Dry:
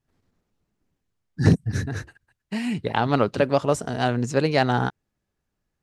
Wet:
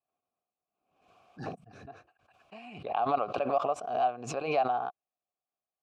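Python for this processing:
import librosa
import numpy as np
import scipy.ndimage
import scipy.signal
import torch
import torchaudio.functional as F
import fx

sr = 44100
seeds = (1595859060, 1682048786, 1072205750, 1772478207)

y = fx.dynamic_eq(x, sr, hz=1000.0, q=0.72, threshold_db=-29.0, ratio=4.0, max_db=3)
y = fx.vowel_filter(y, sr, vowel='a')
y = fx.pre_swell(y, sr, db_per_s=74.0)
y = F.gain(torch.from_numpy(y), -2.0).numpy()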